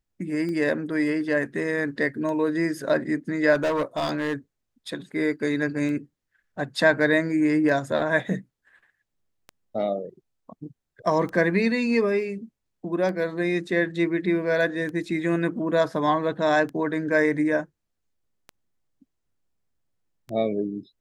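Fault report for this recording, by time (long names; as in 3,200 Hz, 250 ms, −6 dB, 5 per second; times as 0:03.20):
scratch tick 33 1/3 rpm −23 dBFS
0:03.54–0:04.34: clipping −20.5 dBFS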